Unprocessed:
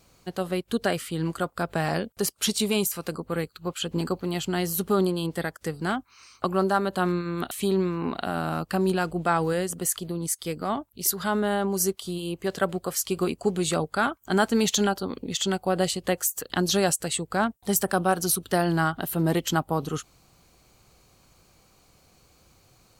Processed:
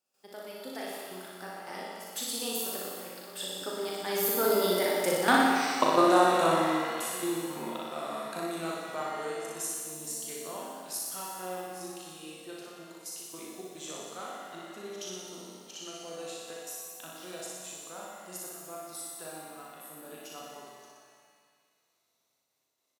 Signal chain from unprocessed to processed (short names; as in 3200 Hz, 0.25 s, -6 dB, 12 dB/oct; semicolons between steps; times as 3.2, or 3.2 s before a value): Doppler pass-by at 5.48, 37 m/s, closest 8.6 m; HPF 320 Hz 12 dB/oct; high shelf 5500 Hz +5.5 dB; in parallel at -2.5 dB: compressor, threshold -54 dBFS, peak gain reduction 25.5 dB; on the sum: step gate ".xxxxxx.x.x.xx" 108 bpm -12 dB; doubler 38 ms -5 dB; flutter echo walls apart 10.3 m, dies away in 1.2 s; shimmer reverb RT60 1.8 s, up +7 st, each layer -8 dB, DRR 2.5 dB; gain +7 dB